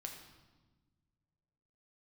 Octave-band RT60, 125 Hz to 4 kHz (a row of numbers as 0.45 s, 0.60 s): 2.5 s, 2.1 s, 1.5 s, 1.2 s, 1.0 s, 1.0 s